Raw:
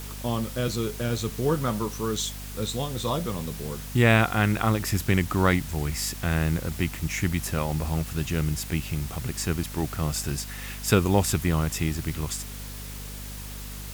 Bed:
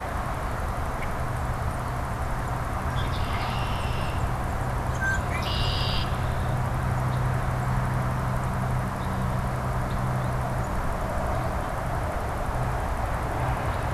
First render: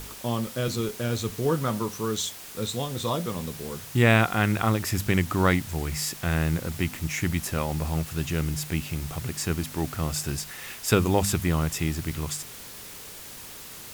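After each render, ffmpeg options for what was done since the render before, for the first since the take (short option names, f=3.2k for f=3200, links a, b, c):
-af "bandreject=f=50:t=h:w=4,bandreject=f=100:t=h:w=4,bandreject=f=150:t=h:w=4,bandreject=f=200:t=h:w=4,bandreject=f=250:t=h:w=4"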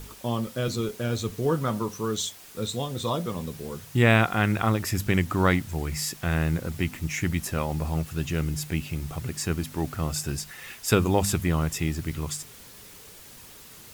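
-af "afftdn=nr=6:nf=-42"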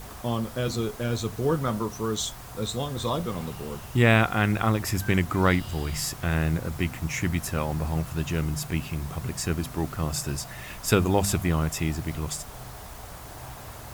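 -filter_complex "[1:a]volume=-15dB[a];[0:a][a]amix=inputs=2:normalize=0"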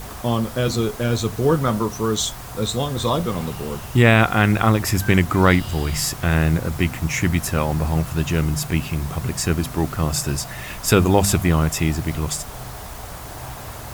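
-af "volume=7dB,alimiter=limit=-3dB:level=0:latency=1"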